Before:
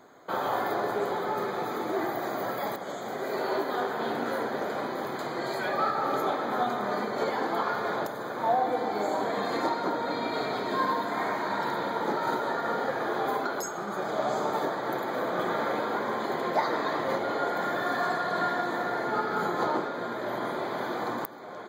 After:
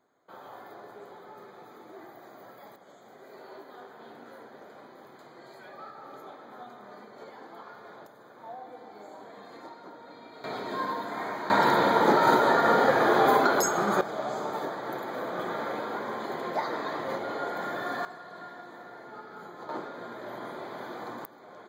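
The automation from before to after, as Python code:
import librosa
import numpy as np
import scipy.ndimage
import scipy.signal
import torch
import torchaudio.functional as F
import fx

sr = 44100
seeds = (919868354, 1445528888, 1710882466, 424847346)

y = fx.gain(x, sr, db=fx.steps((0.0, -17.5), (10.44, -4.5), (11.5, 8.0), (14.01, -4.0), (18.05, -16.0), (19.69, -7.5)))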